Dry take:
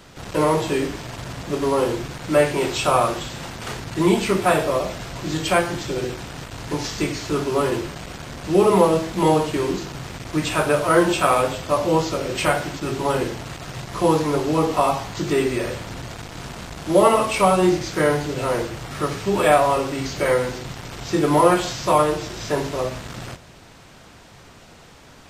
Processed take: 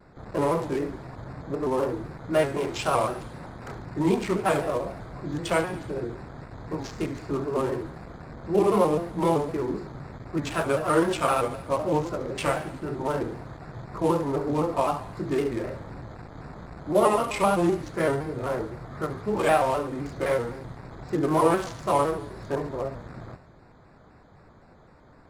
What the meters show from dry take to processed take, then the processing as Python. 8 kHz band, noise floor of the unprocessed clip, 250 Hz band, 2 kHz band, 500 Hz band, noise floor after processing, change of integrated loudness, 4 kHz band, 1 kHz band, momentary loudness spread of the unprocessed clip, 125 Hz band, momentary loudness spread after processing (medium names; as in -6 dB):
-10.5 dB, -46 dBFS, -5.5 dB, -8.0 dB, -5.5 dB, -53 dBFS, -6.0 dB, -11.0 dB, -6.0 dB, 16 LU, -5.5 dB, 18 LU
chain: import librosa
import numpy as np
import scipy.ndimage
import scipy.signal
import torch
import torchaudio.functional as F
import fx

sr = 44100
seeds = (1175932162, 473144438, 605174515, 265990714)

y = fx.wiener(x, sr, points=15)
y = fx.echo_thinned(y, sr, ms=71, feedback_pct=67, hz=1000.0, wet_db=-12.5)
y = fx.vibrato_shape(y, sr, shape='square', rate_hz=3.9, depth_cents=100.0)
y = F.gain(torch.from_numpy(y), -5.5).numpy()